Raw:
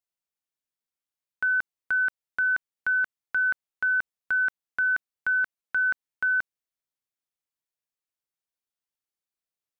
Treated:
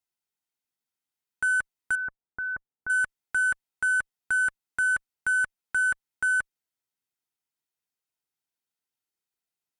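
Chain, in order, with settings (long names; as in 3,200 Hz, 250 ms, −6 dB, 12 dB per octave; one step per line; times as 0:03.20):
harmonic generator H 5 −23 dB, 6 −17 dB, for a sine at −20 dBFS
0:01.95–0:02.90: Gaussian smoothing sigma 6 samples
notch comb filter 570 Hz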